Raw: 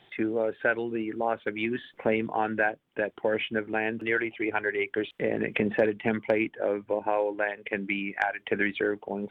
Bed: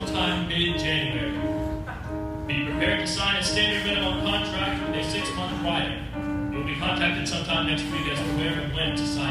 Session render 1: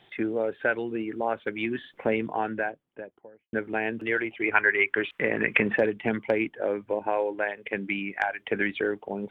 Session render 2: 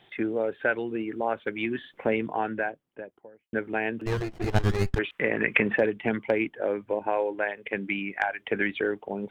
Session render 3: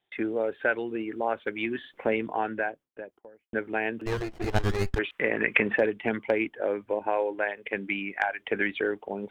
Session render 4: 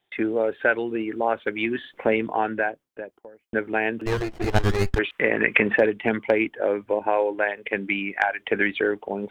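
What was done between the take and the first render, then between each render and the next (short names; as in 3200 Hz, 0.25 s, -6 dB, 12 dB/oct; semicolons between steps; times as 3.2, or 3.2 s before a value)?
2.17–3.53 studio fade out; 4.44–5.76 band shelf 1600 Hz +9 dB
4.06–4.99 running maximum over 33 samples
gate with hold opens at -46 dBFS; bell 140 Hz -5.5 dB 1.3 oct
gain +5 dB; limiter -1 dBFS, peak gain reduction 2 dB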